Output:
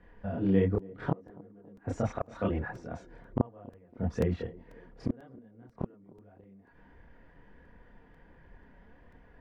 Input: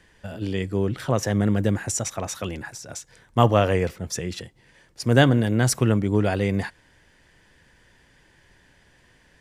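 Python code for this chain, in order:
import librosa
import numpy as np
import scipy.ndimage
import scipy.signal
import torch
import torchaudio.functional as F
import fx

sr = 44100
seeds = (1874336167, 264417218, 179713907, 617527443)

p1 = scipy.signal.sosfilt(scipy.signal.butter(2, 1200.0, 'lowpass', fs=sr, output='sos'), x)
p2 = fx.low_shelf(p1, sr, hz=99.0, db=2.5)
p3 = p2 + 0.37 * np.pad(p2, (int(4.2 * sr / 1000.0), 0))[:len(p2)]
p4 = fx.gate_flip(p3, sr, shuts_db=-15.0, range_db=-36)
p5 = fx.chorus_voices(p4, sr, voices=2, hz=0.71, base_ms=28, depth_ms=3.7, mix_pct=55)
p6 = p5 + fx.echo_banded(p5, sr, ms=278, feedback_pct=61, hz=360.0, wet_db=-19, dry=0)
p7 = fx.buffer_crackle(p6, sr, first_s=0.79, period_s=0.49, block=128, kind='repeat')
y = p7 * 10.0 ** (4.5 / 20.0)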